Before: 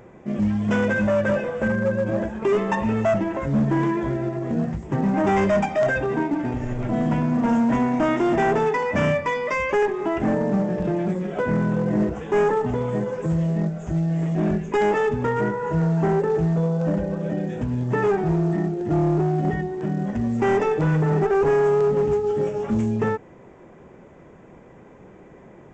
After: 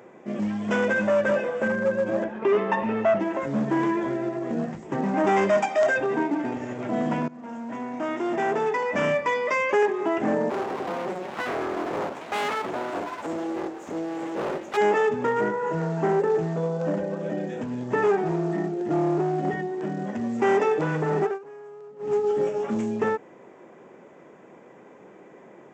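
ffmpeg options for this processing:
ffmpeg -i in.wav -filter_complex "[0:a]asettb=1/sr,asplit=3[link_01][link_02][link_03];[link_01]atrim=end=2.244[link_04];[link_02]atrim=start=2.24:end=3.2,asetpts=PTS-STARTPTS,afade=type=in:duration=0.004:curve=qsin,afade=type=out:start_time=0.956:duration=0.004:curve=qsin,lowpass=3500[link_05];[link_03]atrim=start=3.196[link_06];[link_04][link_05]acrossfade=duration=0.004:curve1=hsin:curve2=qsin[link_07];[link_07][link_06]acrossfade=duration=0.004:curve1=qsin:curve2=hsin,asettb=1/sr,asplit=3[link_08][link_09][link_10];[link_08]atrim=end=5.574[link_11];[link_09]atrim=start=5.57:end=5.97,asetpts=PTS-STARTPTS,afade=type=in:duration=0.004:curve=qsin,afade=type=out:start_time=0.396:duration=0.004:curve=qsin,bass=frequency=250:gain=-9,treble=frequency=4000:gain=4[link_12];[link_10]atrim=start=5.966[link_13];[link_11][link_12]acrossfade=duration=0.004:curve1=hsin:curve2=qsin[link_14];[link_14][link_13]acrossfade=duration=0.004:curve1=qsin:curve2=hsin,asplit=3[link_15][link_16][link_17];[link_15]afade=type=out:start_time=10.49:duration=0.02[link_18];[link_16]aeval=exprs='abs(val(0))':channel_layout=same,afade=type=in:start_time=10.49:duration=0.02,afade=type=out:start_time=14.76:duration=0.02[link_19];[link_17]afade=type=in:start_time=14.76:duration=0.02[link_20];[link_18][link_19][link_20]amix=inputs=3:normalize=0,asplit=4[link_21][link_22][link_23][link_24];[link_21]atrim=end=7.28,asetpts=PTS-STARTPTS,afade=type=out:start_time=7.276:duration=0.004:curve=hsin:silence=0.1[link_25];[link_22]atrim=start=7.28:end=21.39,asetpts=PTS-STARTPTS,afade=type=in:duration=2.08:silence=0.1,afade=type=out:start_time=13.93:duration=0.18:silence=0.0668344[link_26];[link_23]atrim=start=21.39:end=21.99,asetpts=PTS-STARTPTS,volume=-23.5dB[link_27];[link_24]atrim=start=21.99,asetpts=PTS-STARTPTS,afade=type=in:duration=0.18:silence=0.0668344[link_28];[link_25][link_26][link_27][link_28]concat=n=4:v=0:a=1,highpass=260" out.wav

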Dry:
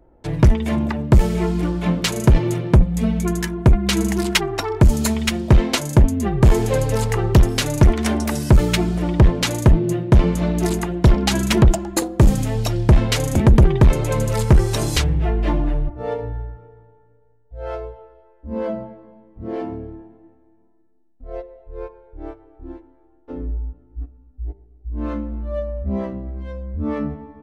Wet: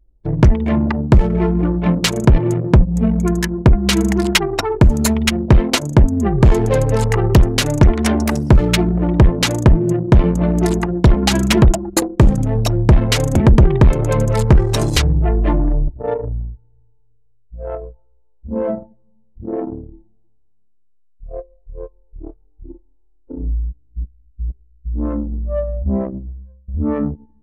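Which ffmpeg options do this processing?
ffmpeg -i in.wav -filter_complex "[0:a]asplit=2[link_01][link_02];[link_01]atrim=end=26.68,asetpts=PTS-STARTPTS,afade=type=out:start_time=26.13:duration=0.55:silence=0.1[link_03];[link_02]atrim=start=26.68,asetpts=PTS-STARTPTS,afade=type=in:duration=0.004:curve=hsin:silence=0.1[link_04];[link_03][link_04]concat=n=2:v=0:a=1,anlmdn=631,acompressor=threshold=-18dB:ratio=1.5,volume=5.5dB" out.wav

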